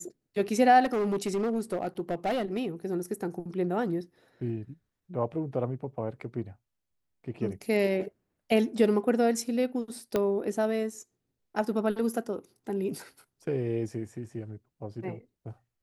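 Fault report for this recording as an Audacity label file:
0.840000	2.630000	clipping −24.5 dBFS
10.160000	10.160000	click −14 dBFS

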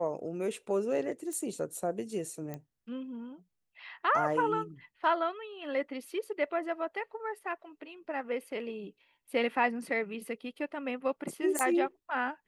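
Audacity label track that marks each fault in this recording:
1.330000	1.330000	click −27 dBFS
2.540000	2.540000	click −25 dBFS
11.590000	11.590000	click −15 dBFS

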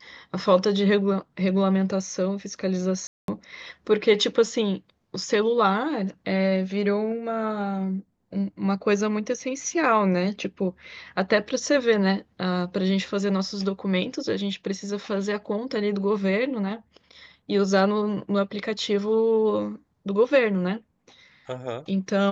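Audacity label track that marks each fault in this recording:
3.070000	3.280000	drop-out 212 ms

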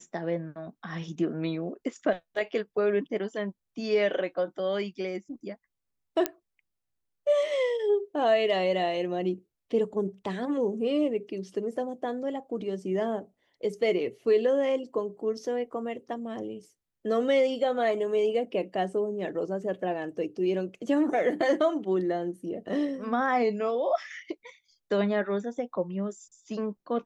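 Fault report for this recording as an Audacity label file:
6.260000	6.260000	click −9 dBFS

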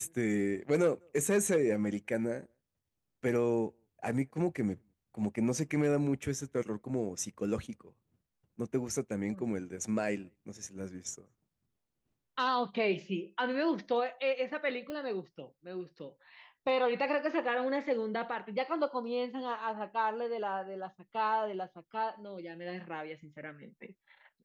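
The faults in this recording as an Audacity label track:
14.900000	14.900000	click −27 dBFS

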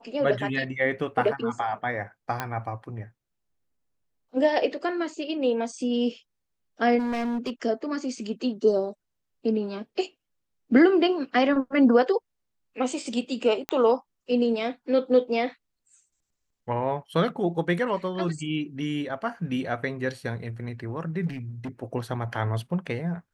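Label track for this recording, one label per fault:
2.400000	2.400000	click −13 dBFS
6.980000	7.500000	clipping −25 dBFS
13.690000	13.690000	click −12 dBFS
21.260000	21.690000	clipping −30 dBFS

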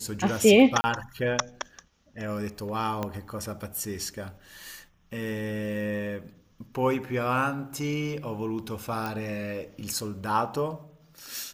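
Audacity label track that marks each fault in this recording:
0.810000	0.840000	drop-out 30 ms
3.030000	3.030000	click −16 dBFS
9.060000	9.060000	click

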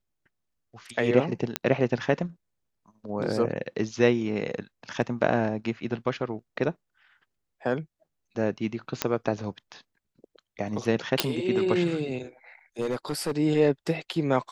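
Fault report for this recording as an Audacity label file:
1.560000	1.560000	click −7 dBFS
9.020000	9.020000	click −6 dBFS
11.200000	11.200000	click
12.810000	13.320000	clipping −23 dBFS

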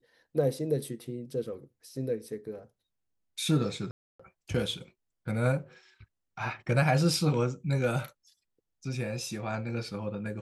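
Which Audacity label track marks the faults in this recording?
3.910000	4.200000	drop-out 285 ms

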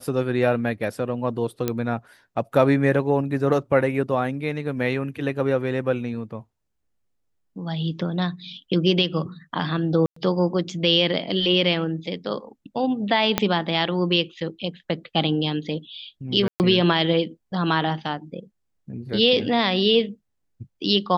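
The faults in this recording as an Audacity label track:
1.680000	1.680000	click −9 dBFS
10.060000	10.160000	drop-out 104 ms
13.380000	13.380000	click −3 dBFS
16.480000	16.600000	drop-out 119 ms

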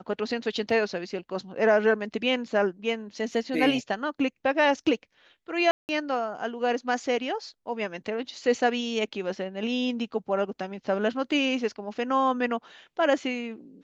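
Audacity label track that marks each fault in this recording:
0.700000	0.700000	drop-out 2.6 ms
5.710000	5.890000	drop-out 179 ms

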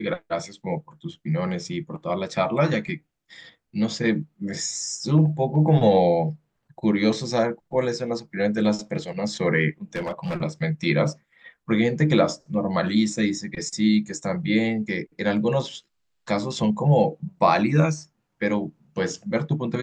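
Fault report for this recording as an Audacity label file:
9.950000	10.410000	clipping −24 dBFS

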